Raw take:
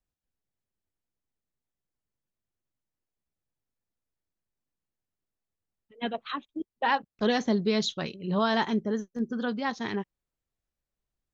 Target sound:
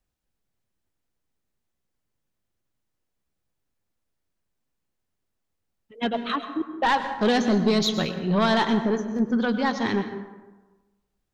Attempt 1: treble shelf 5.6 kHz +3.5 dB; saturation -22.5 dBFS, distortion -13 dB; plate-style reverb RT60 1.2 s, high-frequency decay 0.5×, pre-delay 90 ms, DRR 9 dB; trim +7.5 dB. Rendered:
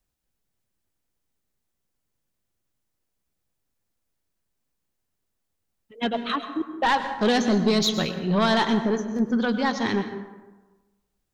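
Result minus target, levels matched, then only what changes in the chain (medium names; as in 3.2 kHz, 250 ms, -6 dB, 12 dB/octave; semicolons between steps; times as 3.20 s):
8 kHz band +3.0 dB
change: treble shelf 5.6 kHz -3 dB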